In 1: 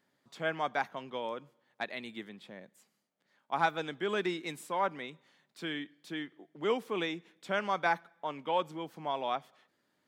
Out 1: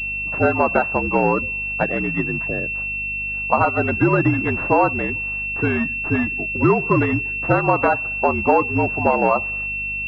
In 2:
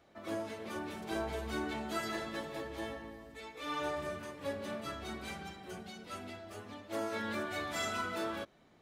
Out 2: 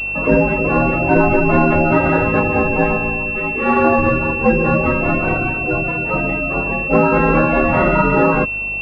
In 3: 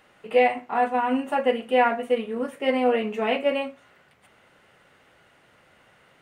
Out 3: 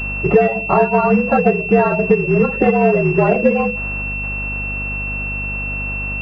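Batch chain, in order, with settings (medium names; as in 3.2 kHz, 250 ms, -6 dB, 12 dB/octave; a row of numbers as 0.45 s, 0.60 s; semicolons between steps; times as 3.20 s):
coarse spectral quantiser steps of 30 dB; frequency shift -55 Hz; hum 50 Hz, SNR 24 dB; compression 6:1, threshold -34 dBFS; class-D stage that switches slowly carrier 2.7 kHz; peak normalisation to -1.5 dBFS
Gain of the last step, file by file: +22.5 dB, +27.0 dB, +23.5 dB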